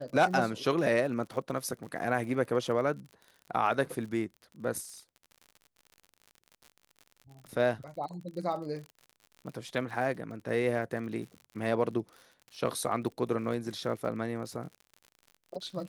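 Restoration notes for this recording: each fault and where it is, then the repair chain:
surface crackle 58 per second −41 dBFS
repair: click removal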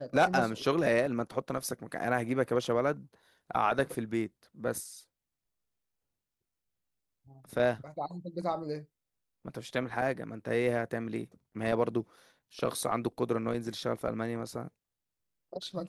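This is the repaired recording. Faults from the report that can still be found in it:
none of them is left

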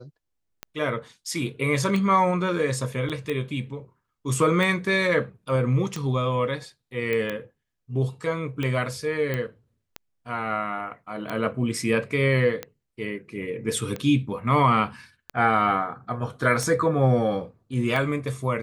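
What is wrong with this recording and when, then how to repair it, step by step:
scratch tick 45 rpm −16 dBFS
0:03.09–0:03.10: drop-out 7.2 ms
0:07.13: click −15 dBFS
0:09.34: click −15 dBFS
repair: click removal
repair the gap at 0:03.09, 7.2 ms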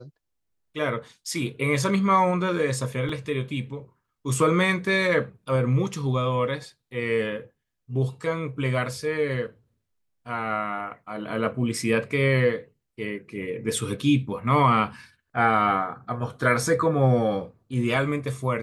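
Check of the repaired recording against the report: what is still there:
none of them is left

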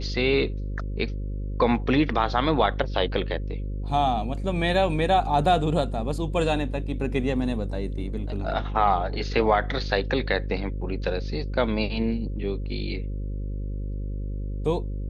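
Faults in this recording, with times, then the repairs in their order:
mains buzz 50 Hz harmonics 11 −30 dBFS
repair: hum removal 50 Hz, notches 11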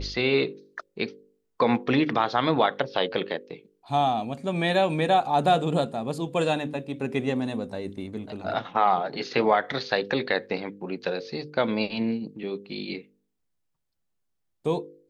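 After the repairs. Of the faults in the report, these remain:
none of them is left

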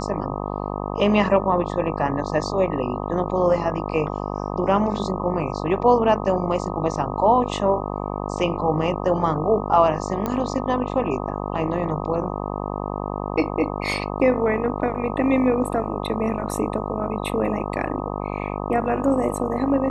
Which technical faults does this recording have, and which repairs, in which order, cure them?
mains buzz 50 Hz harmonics 25 −28 dBFS
0:10.26: click −12 dBFS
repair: click removal
hum removal 50 Hz, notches 25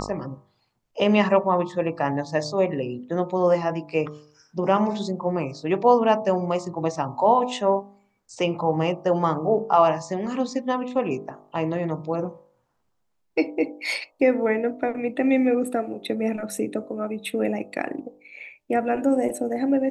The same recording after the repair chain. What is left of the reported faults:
none of them is left

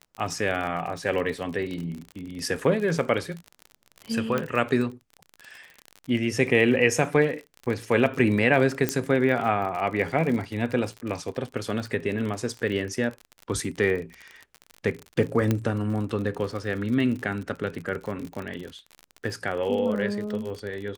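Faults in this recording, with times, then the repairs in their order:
surface crackle 44 per second −31 dBFS
0:04.38: click −13 dBFS
0:08.89: click −7 dBFS
0:15.51: click −10 dBFS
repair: click removal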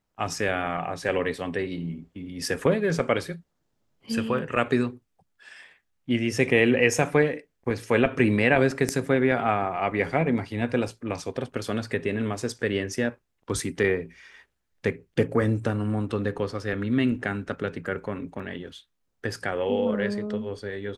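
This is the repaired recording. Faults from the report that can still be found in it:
0:04.38: click
0:08.89: click

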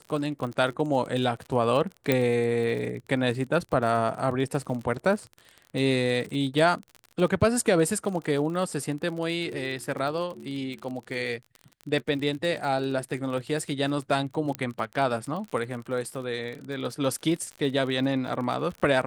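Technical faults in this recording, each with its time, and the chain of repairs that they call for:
surface crackle 41 per second −33 dBFS
0:02.12: click −9 dBFS
0:14.55: click −15 dBFS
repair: click removal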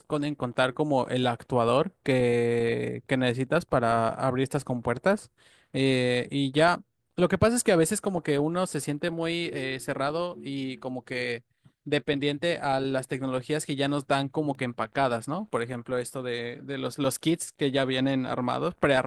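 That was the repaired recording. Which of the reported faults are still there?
0:02.12: click
0:14.55: click

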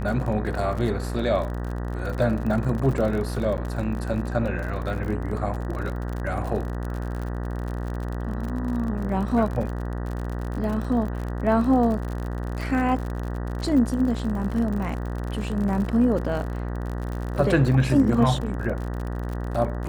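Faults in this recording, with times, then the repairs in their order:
mains buzz 60 Hz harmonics 32 −29 dBFS
surface crackle 51 per second −30 dBFS
0:03.57–0:03.58: drop-out 9.4 ms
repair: click removal
hum removal 60 Hz, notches 32
repair the gap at 0:03.57, 9.4 ms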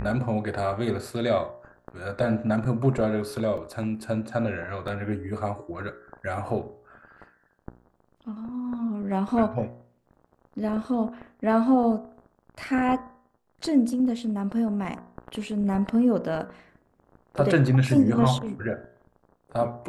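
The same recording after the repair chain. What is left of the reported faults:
none of them is left

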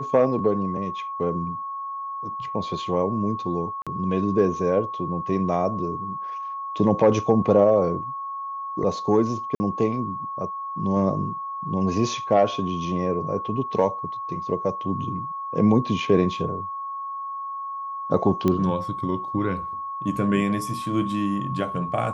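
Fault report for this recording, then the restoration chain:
whistle 1,100 Hz −29 dBFS
0:03.82–0:03.87: drop-out 46 ms
0:09.55–0:09.60: drop-out 50 ms
0:18.48: click −11 dBFS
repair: click removal
notch filter 1,100 Hz, Q 30
repair the gap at 0:03.82, 46 ms
repair the gap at 0:09.55, 50 ms

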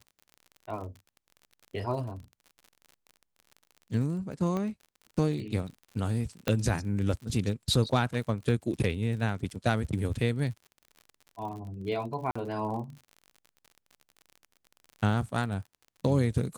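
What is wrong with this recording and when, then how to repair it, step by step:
surface crackle 54 per second −40 dBFS
0:04.57: click −21 dBFS
0:06.48: click −12 dBFS
0:12.31–0:12.36: drop-out 45 ms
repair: click removal
repair the gap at 0:12.31, 45 ms

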